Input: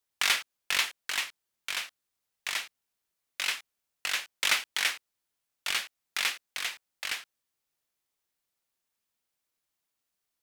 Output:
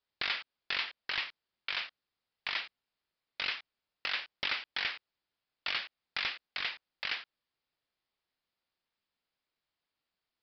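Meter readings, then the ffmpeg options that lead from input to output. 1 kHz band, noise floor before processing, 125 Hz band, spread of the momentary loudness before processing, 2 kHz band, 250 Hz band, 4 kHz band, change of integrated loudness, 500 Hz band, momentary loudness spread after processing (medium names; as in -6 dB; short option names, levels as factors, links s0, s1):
-4.5 dB, -84 dBFS, no reading, 12 LU, -4.5 dB, -1.5 dB, -4.5 dB, -5.0 dB, -3.0 dB, 8 LU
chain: -af "acompressor=threshold=0.0398:ratio=6,aresample=11025,aeval=exprs='0.0708*(abs(mod(val(0)/0.0708+3,4)-2)-1)':c=same,aresample=44100"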